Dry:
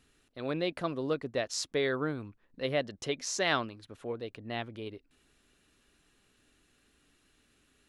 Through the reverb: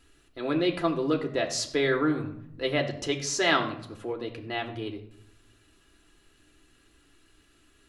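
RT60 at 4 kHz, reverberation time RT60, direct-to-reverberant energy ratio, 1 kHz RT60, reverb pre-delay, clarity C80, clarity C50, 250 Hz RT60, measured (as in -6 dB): 0.45 s, 0.75 s, 1.5 dB, 0.70 s, 3 ms, 13.0 dB, 10.5 dB, 1.0 s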